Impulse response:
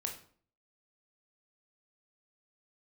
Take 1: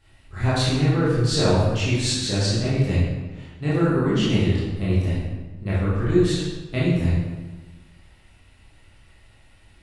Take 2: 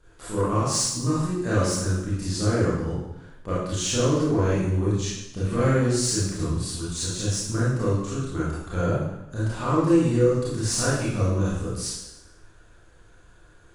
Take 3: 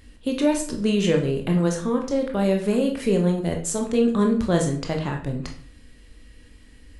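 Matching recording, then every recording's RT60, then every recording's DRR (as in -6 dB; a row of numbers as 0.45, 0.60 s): 3; 1.3, 0.85, 0.50 s; -10.0, -9.0, 2.0 dB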